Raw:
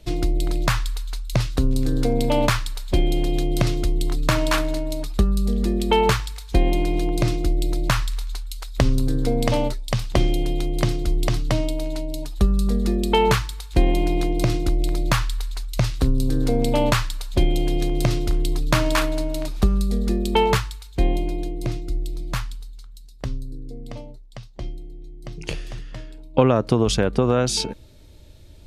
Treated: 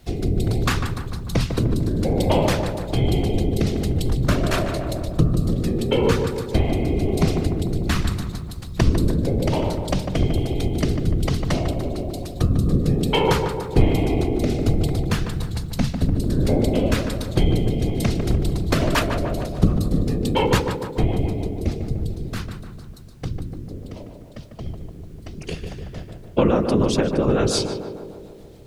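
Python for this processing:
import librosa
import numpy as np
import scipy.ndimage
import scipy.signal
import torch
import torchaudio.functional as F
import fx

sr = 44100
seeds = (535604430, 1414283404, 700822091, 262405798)

y = fx.whisperise(x, sr, seeds[0])
y = fx.rotary_switch(y, sr, hz=1.2, then_hz=7.0, switch_at_s=17.8)
y = fx.echo_tape(y, sr, ms=149, feedback_pct=73, wet_db=-4.5, lp_hz=1400.0, drive_db=5.0, wow_cents=11)
y = fx.dmg_noise_colour(y, sr, seeds[1], colour='pink', level_db=-61.0)
y = y * librosa.db_to_amplitude(1.0)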